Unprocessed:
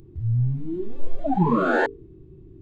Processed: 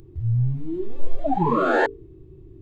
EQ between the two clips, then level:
parametric band 200 Hz −10 dB 0.66 octaves
notch filter 1,500 Hz, Q 15
+2.5 dB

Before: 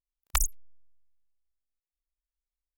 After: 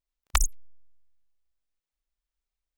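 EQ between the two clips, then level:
parametric band 14,000 Hz −12 dB 0.84 octaves
+4.0 dB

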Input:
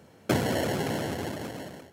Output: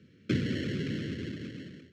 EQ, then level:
high-pass filter 80 Hz
Butterworth band-reject 810 Hz, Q 0.5
high-frequency loss of the air 190 metres
0.0 dB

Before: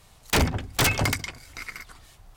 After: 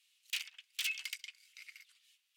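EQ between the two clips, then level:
four-pole ladder high-pass 2,400 Hz, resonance 55%
−6.5 dB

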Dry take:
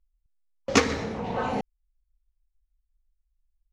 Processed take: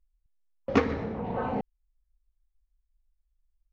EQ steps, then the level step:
head-to-tape spacing loss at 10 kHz 37 dB
0.0 dB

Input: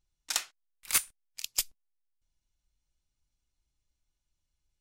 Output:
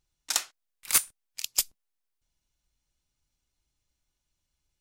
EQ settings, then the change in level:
dynamic equaliser 2,400 Hz, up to −4 dB, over −43 dBFS, Q 0.91
low-shelf EQ 60 Hz −8 dB
+4.5 dB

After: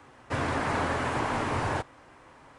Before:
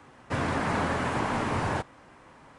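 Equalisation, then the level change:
parametric band 190 Hz −9 dB 0.41 octaves
0.0 dB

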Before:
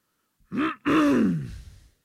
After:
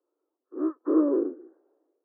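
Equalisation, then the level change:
Gaussian smoothing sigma 10 samples
Butterworth high-pass 320 Hz 72 dB per octave
spectral tilt −3.5 dB per octave
0.0 dB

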